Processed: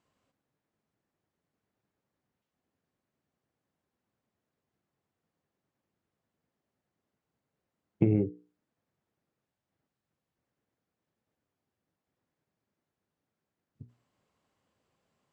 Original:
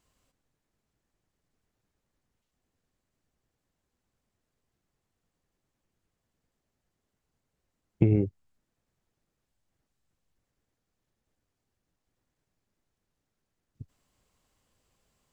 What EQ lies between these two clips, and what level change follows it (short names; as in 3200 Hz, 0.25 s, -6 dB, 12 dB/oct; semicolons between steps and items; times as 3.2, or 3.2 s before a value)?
HPF 120 Hz 12 dB/oct; LPF 2100 Hz 6 dB/oct; notches 60/120/180/240/300/360/420/480 Hz; 0.0 dB